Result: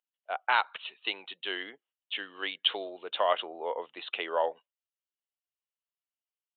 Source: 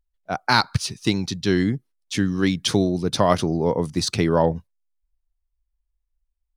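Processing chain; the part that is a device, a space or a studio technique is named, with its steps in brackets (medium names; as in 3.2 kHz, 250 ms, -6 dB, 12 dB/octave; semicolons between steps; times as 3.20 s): musical greeting card (resampled via 8 kHz; high-pass 530 Hz 24 dB/octave; peaking EQ 2.9 kHz +11.5 dB 0.27 oct); trim -6.5 dB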